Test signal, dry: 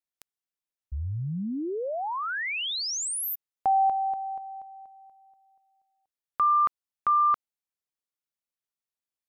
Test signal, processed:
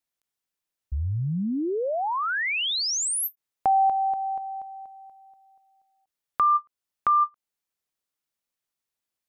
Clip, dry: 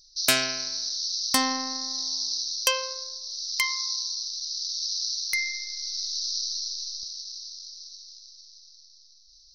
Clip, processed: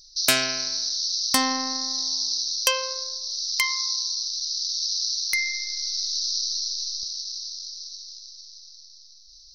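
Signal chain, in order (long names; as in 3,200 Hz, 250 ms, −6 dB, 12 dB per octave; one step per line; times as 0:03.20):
in parallel at −1 dB: downward compressor, threshold −32 dBFS
on the sum: every ending faded ahead of time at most 570 dB per second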